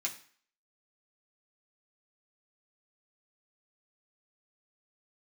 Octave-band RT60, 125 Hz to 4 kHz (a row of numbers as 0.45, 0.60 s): 0.40, 0.45, 0.45, 0.50, 0.50, 0.50 s